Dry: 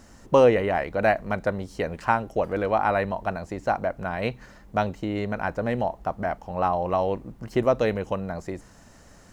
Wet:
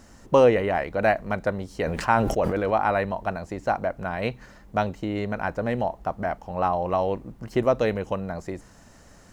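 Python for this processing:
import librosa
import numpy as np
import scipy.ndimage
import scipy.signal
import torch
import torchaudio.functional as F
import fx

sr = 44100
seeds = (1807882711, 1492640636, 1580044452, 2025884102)

y = fx.sustainer(x, sr, db_per_s=40.0, at=(1.71, 2.77))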